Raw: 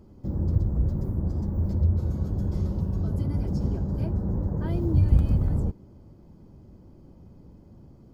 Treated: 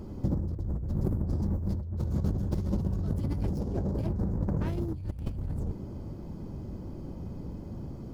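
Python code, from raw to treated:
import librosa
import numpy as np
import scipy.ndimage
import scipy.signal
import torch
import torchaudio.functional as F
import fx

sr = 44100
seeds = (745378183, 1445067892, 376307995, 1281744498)

y = fx.tracing_dist(x, sr, depth_ms=0.31)
y = fx.peak_eq(y, sr, hz=500.0, db=7.0, octaves=1.8, at=(3.53, 4.01))
y = fx.over_compress(y, sr, threshold_db=-33.0, ratio=-1.0)
y = y * 10.0 ** (2.5 / 20.0)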